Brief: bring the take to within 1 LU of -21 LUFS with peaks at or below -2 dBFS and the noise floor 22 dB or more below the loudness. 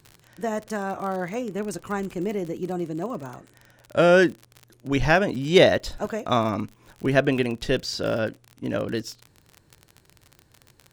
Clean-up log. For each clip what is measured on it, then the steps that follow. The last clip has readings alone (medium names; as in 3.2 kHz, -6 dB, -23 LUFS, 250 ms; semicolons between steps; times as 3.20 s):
tick rate 41 per s; loudness -24.0 LUFS; peak level -3.0 dBFS; loudness target -21.0 LUFS
-> de-click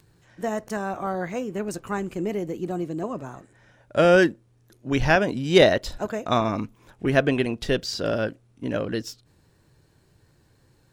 tick rate 0.37 per s; loudness -24.5 LUFS; peak level -3.0 dBFS; loudness target -21.0 LUFS
-> trim +3.5 dB; peak limiter -2 dBFS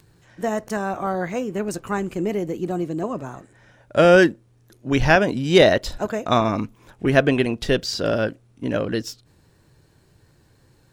loudness -21.0 LUFS; peak level -2.0 dBFS; noise floor -58 dBFS